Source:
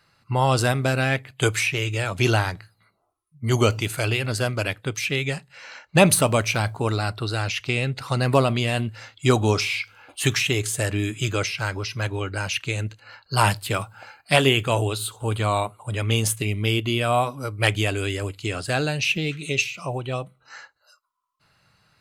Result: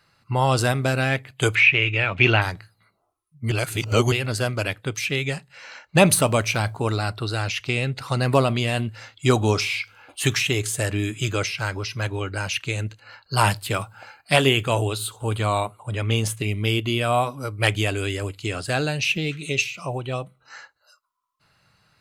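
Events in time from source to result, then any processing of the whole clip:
1.55–2.42 synth low-pass 2500 Hz, resonance Q 3.1
3.51–4.12 reverse
15.8–16.44 high shelf 6200 Hz -7.5 dB

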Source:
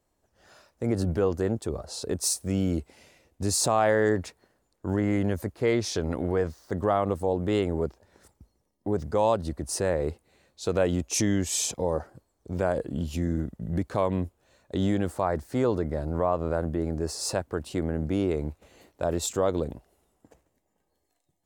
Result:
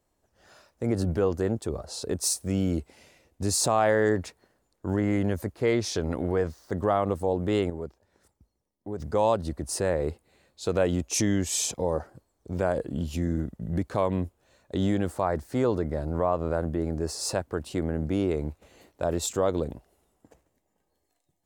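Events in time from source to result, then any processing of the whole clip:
7.7–9 gain -7.5 dB
9.73–10.66 notch 5900 Hz

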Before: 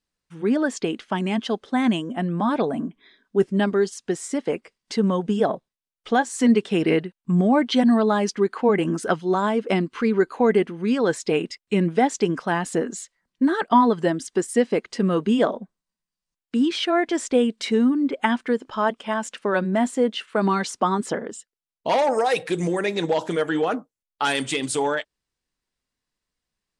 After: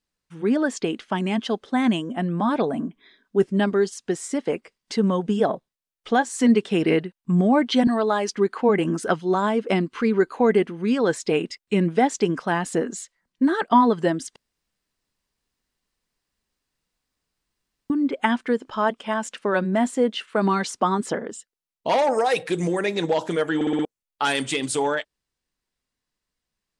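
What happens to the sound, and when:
7.87–8.32 HPF 320 Hz
14.36–17.9 room tone
23.55 stutter in place 0.06 s, 5 plays

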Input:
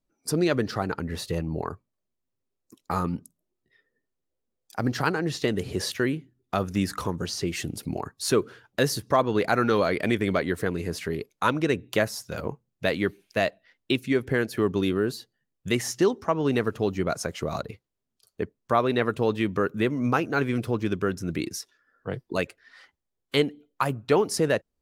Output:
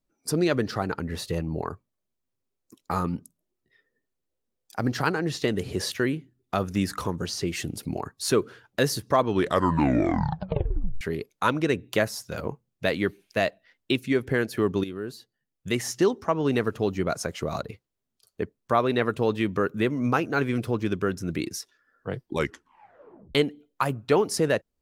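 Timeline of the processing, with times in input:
9.19 tape stop 1.82 s
14.84–15.99 fade in, from -12 dB
22.23 tape stop 1.12 s

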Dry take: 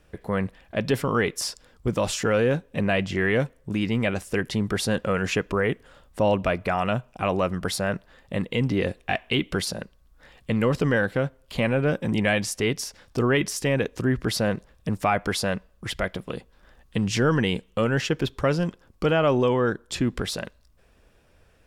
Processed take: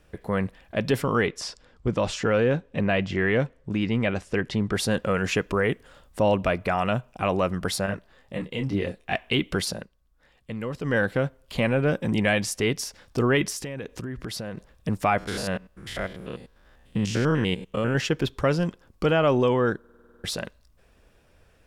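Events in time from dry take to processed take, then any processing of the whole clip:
1.26–4.73 air absorption 82 m
5.35–6.2 bell 11000 Hz +2.5 dB 2.4 oct
7.86–9.12 detuned doubles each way 20 cents
9.73–10.98 dip -9.5 dB, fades 0.16 s
13.5–14.57 compressor 16:1, threshold -29 dBFS
15.18–17.95 stepped spectrum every 0.1 s
19.79 stutter in place 0.05 s, 9 plays

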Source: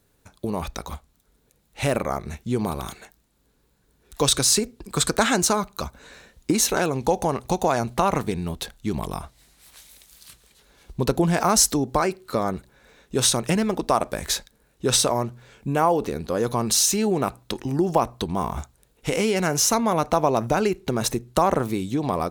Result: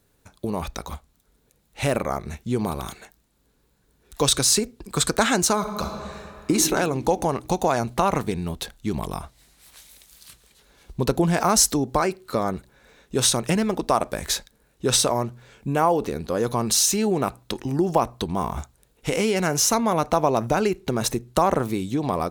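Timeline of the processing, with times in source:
5.55–6.53 reverb throw, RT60 2.3 s, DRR 2.5 dB

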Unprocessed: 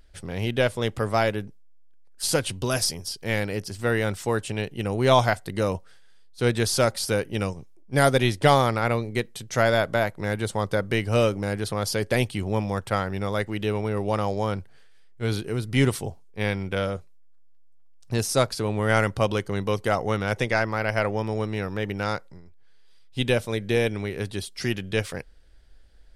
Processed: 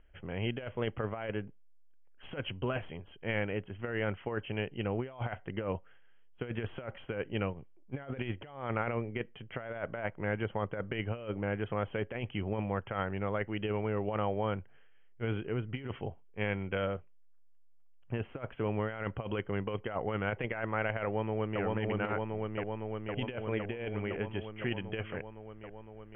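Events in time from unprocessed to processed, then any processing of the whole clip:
21.04–21.61 echo throw 0.51 s, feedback 80%, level -1 dB
whole clip: Chebyshev low-pass 3200 Hz, order 10; low shelf 320 Hz -2 dB; negative-ratio compressor -26 dBFS, ratio -0.5; gain -7 dB

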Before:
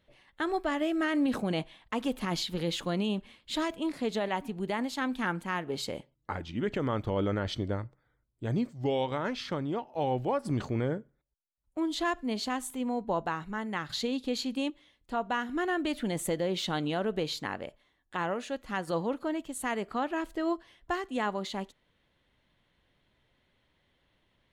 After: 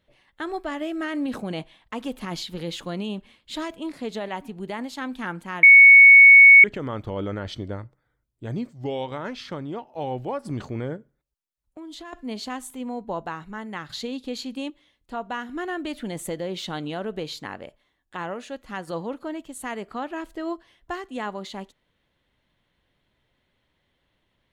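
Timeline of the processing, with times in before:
5.63–6.64 bleep 2220 Hz -6 dBFS
10.96–12.13 compressor, threshold -37 dBFS

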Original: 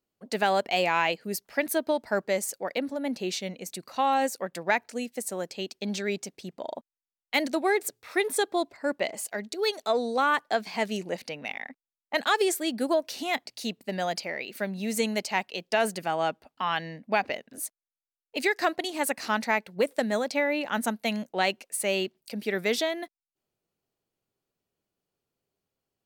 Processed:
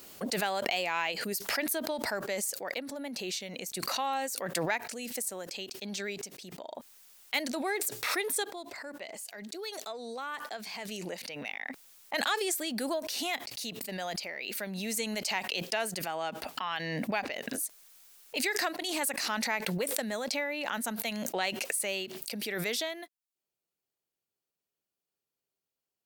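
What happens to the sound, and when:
8.5–10.88 gain -7.5 dB
whole clip: tilt +2 dB/oct; backwards sustainer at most 22 dB/s; gain -7.5 dB

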